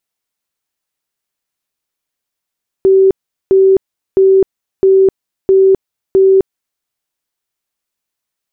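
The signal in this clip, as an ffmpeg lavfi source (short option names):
-f lavfi -i "aevalsrc='0.596*sin(2*PI*384*mod(t,0.66))*lt(mod(t,0.66),99/384)':d=3.96:s=44100"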